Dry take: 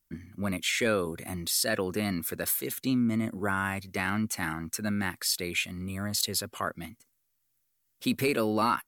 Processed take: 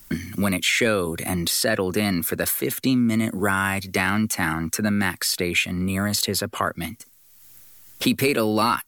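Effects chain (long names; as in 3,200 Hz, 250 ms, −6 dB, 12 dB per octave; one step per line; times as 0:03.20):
multiband upward and downward compressor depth 70%
level +7 dB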